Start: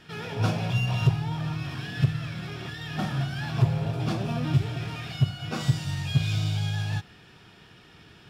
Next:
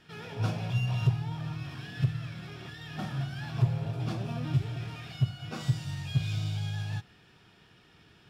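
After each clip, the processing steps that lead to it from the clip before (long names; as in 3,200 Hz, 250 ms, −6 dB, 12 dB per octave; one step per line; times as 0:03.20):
dynamic equaliser 120 Hz, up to +5 dB, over −37 dBFS, Q 4.3
level −7 dB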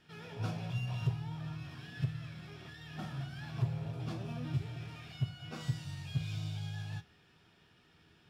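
tuned comb filter 81 Hz, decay 0.22 s, harmonics all, mix 60%
level −2 dB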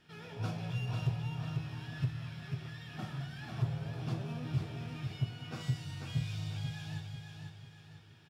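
repeating echo 494 ms, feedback 42%, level −5.5 dB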